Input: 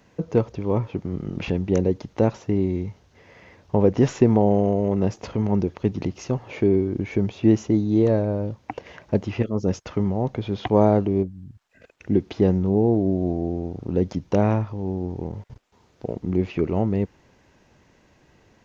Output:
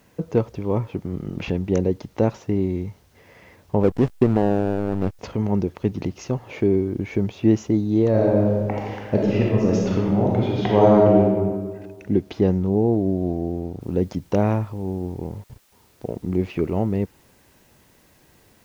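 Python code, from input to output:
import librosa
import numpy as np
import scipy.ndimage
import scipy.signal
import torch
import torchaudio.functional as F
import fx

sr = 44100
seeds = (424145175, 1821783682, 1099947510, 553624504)

y = fx.backlash(x, sr, play_db=-19.5, at=(3.83, 5.19))
y = fx.reverb_throw(y, sr, start_s=8.1, length_s=3.2, rt60_s=1.6, drr_db=-3.5)
y = fx.noise_floor_step(y, sr, seeds[0], at_s=13.81, before_db=-67, after_db=-61, tilt_db=0.0)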